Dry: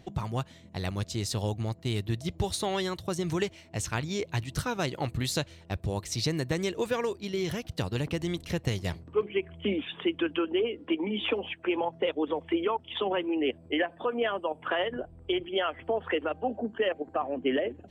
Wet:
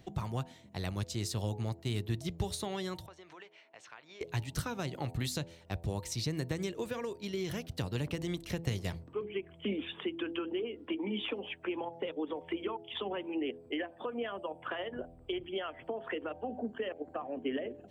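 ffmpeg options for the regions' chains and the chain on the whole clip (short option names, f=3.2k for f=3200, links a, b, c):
-filter_complex "[0:a]asettb=1/sr,asplit=3[a][b][c];[a]atrim=end=3.064[d];[b]atrim=start=3.06:end=4.21,asetpts=PTS-STARTPTS,afade=t=in:d=0.004:c=qsin,afade=t=out:st=1.146:d=0.004:c=qsin,highpass=660,lowpass=2.7k,acompressor=threshold=-49dB:ratio=2.5:attack=3.2:release=140:knee=1:detection=peak[e];[c]atrim=start=4.206[f];[d][e]acrossfade=d=0.004:c1=hsin:c2=qsin[g];[g][f]acrossfade=d=0.004:c1=qsin:c2=hsin,highshelf=f=12k:g=6,bandreject=f=83.87:t=h:w=4,bandreject=f=167.74:t=h:w=4,bandreject=f=251.61:t=h:w=4,bandreject=f=335.48:t=h:w=4,bandreject=f=419.35:t=h:w=4,bandreject=f=503.22:t=h:w=4,bandreject=f=587.09:t=h:w=4,bandreject=f=670.96:t=h:w=4,bandreject=f=754.83:t=h:w=4,bandreject=f=838.7:t=h:w=4,bandreject=f=922.57:t=h:w=4,acrossover=split=270[h][i];[i]acompressor=threshold=-32dB:ratio=6[j];[h][j]amix=inputs=2:normalize=0,volume=-3.5dB"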